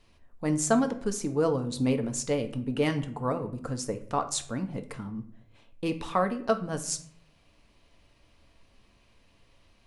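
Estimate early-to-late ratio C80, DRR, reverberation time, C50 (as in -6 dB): 17.0 dB, 6.5 dB, 0.60 s, 13.5 dB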